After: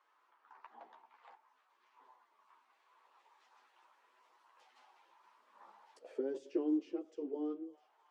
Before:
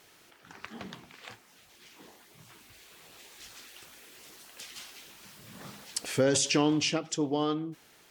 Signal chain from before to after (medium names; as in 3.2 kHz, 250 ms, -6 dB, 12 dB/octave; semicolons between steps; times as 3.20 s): high-pass 270 Hz 24 dB/octave; band-stop 720 Hz, Q 23; on a send: feedback echo behind a high-pass 325 ms, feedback 55%, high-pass 1.5 kHz, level -18 dB; on the sum: chorus voices 6, 0.41 Hz, delay 12 ms, depth 4.1 ms; auto-wah 350–1100 Hz, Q 5.2, down, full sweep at -32 dBFS; trim +2.5 dB